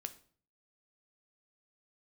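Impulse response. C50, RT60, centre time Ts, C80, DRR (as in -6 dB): 15.5 dB, 0.50 s, 5 ms, 19.5 dB, 9.0 dB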